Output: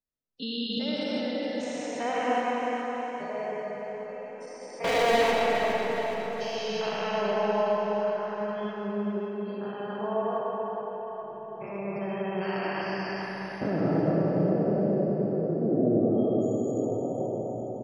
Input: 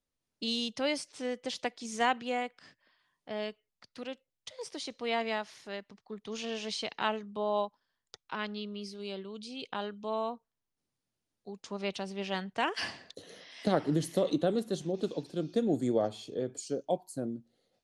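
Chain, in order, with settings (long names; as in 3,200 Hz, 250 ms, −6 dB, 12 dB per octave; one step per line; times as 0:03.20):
spectrum averaged block by block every 400 ms
noise reduction from a noise print of the clip's start 13 dB
gate on every frequency bin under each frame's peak −25 dB strong
0:04.84–0:05.31: leveller curve on the samples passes 5
repeating echo 414 ms, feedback 53%, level −8 dB
comb and all-pass reverb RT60 4.4 s, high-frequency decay 0.45×, pre-delay 30 ms, DRR −3 dB
level +4.5 dB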